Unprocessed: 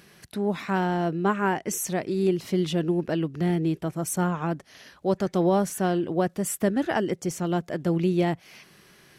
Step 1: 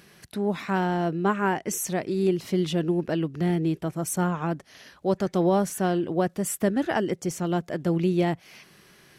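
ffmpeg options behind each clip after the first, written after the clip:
-af anull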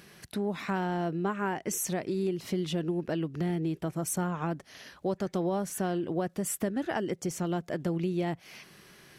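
-af "acompressor=threshold=-29dB:ratio=3"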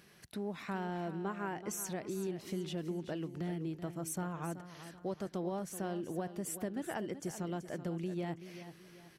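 -af "aecho=1:1:380|760|1140|1520:0.251|0.098|0.0382|0.0149,volume=-8dB"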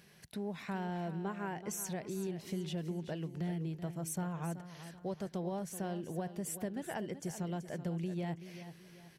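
-af "equalizer=f=160:t=o:w=0.33:g=4,equalizer=f=315:t=o:w=0.33:g=-6,equalizer=f=1.25k:t=o:w=0.33:g=-6"

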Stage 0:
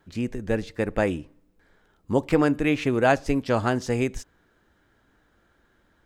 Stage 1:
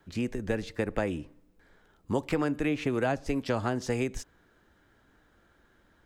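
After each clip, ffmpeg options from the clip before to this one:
-filter_complex "[0:a]acrossover=split=290|960[a][b][c];[a]acompressor=threshold=-32dB:ratio=4[d];[b]acompressor=threshold=-30dB:ratio=4[e];[c]acompressor=threshold=-36dB:ratio=4[f];[d][e][f]amix=inputs=3:normalize=0"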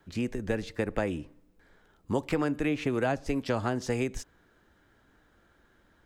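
-af anull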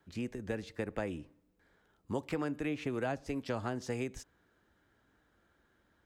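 -af "highpass=42,volume=-7dB"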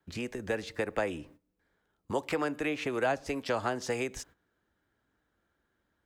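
-filter_complex "[0:a]agate=range=-14dB:threshold=-59dB:ratio=16:detection=peak,acrossover=split=380[a][b];[a]acompressor=threshold=-48dB:ratio=6[c];[c][b]amix=inputs=2:normalize=0,volume=8dB"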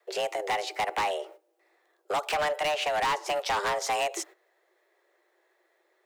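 -af "afreqshift=300,asoftclip=type=hard:threshold=-31.5dB,volume=7.5dB"

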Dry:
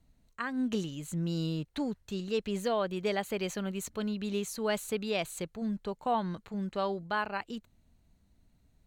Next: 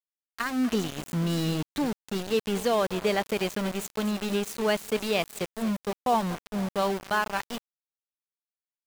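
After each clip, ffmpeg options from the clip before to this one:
-af "aecho=1:1:242|484|726|968|1210:0.141|0.0819|0.0475|0.0276|0.016,aeval=exprs='val(0)*gte(abs(val(0)),0.0158)':c=same,volume=5.5dB"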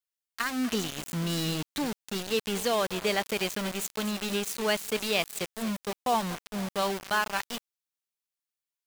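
-af "tiltshelf=f=1.5k:g=-4"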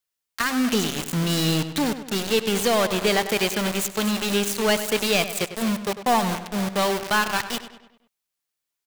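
-filter_complex "[0:a]aeval=exprs='clip(val(0),-1,0.0562)':c=same,asplit=2[a][b];[b]adelay=99,lowpass=f=4.5k:p=1,volume=-11.5dB,asplit=2[c][d];[d]adelay=99,lowpass=f=4.5k:p=1,volume=0.51,asplit=2[e][f];[f]adelay=99,lowpass=f=4.5k:p=1,volume=0.51,asplit=2[g][h];[h]adelay=99,lowpass=f=4.5k:p=1,volume=0.51,asplit=2[i][j];[j]adelay=99,lowpass=f=4.5k:p=1,volume=0.51[k];[c][e][g][i][k]amix=inputs=5:normalize=0[l];[a][l]amix=inputs=2:normalize=0,volume=7.5dB"

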